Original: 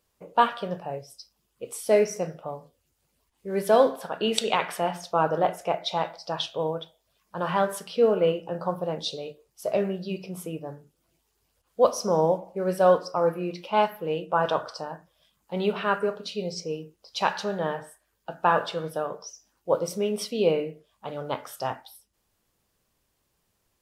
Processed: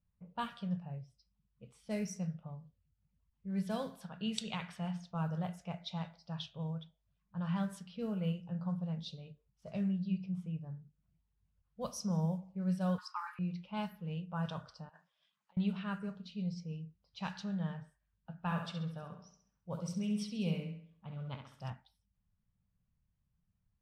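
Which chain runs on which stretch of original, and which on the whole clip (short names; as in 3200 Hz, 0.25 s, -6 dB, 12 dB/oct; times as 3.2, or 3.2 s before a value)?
12.98–13.39 Chebyshev high-pass 810 Hz, order 10 + bell 1700 Hz +13 dB 2.4 oct + notch 5700 Hz, Q 10
14.89–15.57 HPF 650 Hz + high shelf 2300 Hz +7.5 dB + negative-ratio compressor -46 dBFS
18.38–21.7 bell 2400 Hz +3 dB 0.51 oct + flutter echo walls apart 11.5 m, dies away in 0.58 s
whole clip: low-pass opened by the level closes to 1800 Hz, open at -17.5 dBFS; EQ curve 190 Hz 0 dB, 330 Hz -25 dB, 8400 Hz -8 dB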